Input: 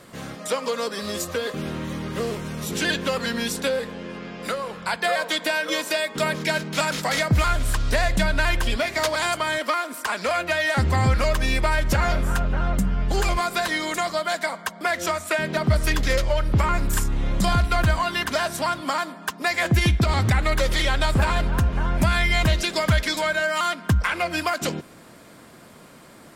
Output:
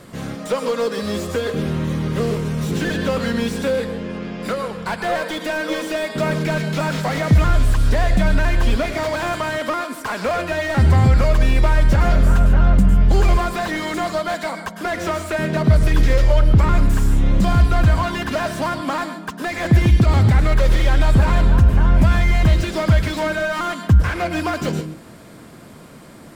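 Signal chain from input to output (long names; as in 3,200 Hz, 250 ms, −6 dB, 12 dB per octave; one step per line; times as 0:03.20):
brickwall limiter −13 dBFS, peak gain reduction 4 dB
low-shelf EQ 350 Hz +7.5 dB
on a send at −11 dB: convolution reverb, pre-delay 98 ms
on the sum: slew-rate limiting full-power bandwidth 95 Hz
level +2 dB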